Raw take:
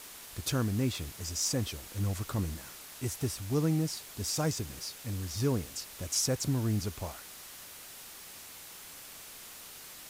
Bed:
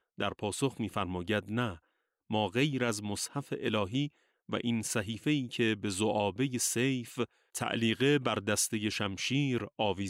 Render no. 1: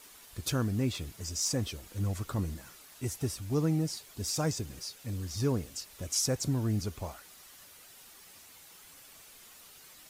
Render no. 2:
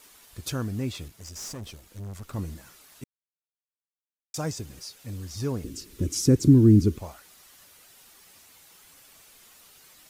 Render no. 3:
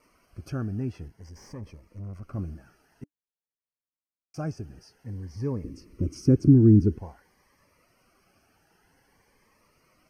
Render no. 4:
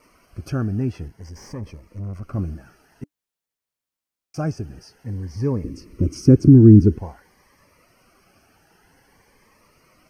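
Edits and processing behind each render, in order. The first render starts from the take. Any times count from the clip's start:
denoiser 8 dB, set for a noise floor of -49 dBFS
1.08–2.34 tube stage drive 34 dB, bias 0.7; 3.04–4.34 mute; 5.64–6.98 resonant low shelf 480 Hz +12 dB, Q 3
running mean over 12 samples; cascading phaser rising 0.51 Hz
gain +7.5 dB; limiter -1 dBFS, peak gain reduction 2.5 dB

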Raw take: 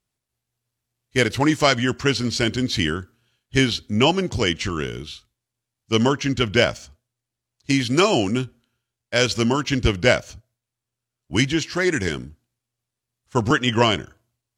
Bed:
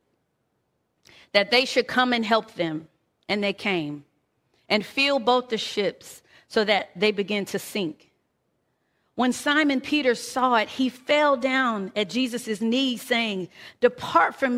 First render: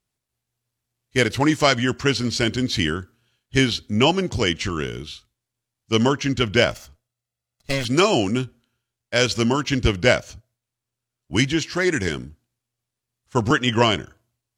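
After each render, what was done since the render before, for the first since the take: 6.7–7.85 minimum comb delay 1.5 ms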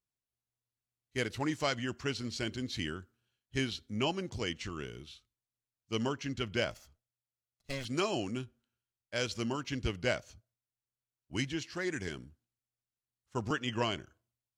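gain -15 dB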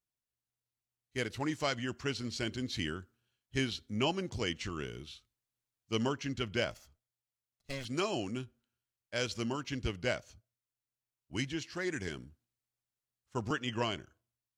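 vocal rider within 3 dB 2 s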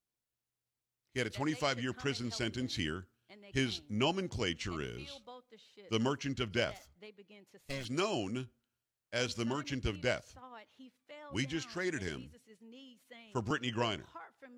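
add bed -31.5 dB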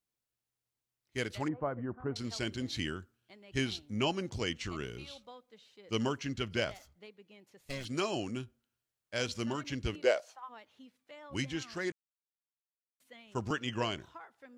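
1.48–2.16 LPF 1200 Hz 24 dB/oct; 9.94–10.48 resonant high-pass 320 Hz -> 1100 Hz, resonance Q 2.9; 11.92–13 mute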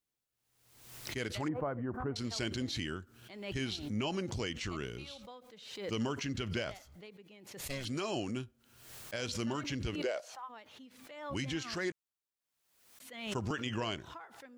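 limiter -26 dBFS, peak gain reduction 11 dB; backwards sustainer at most 62 dB/s

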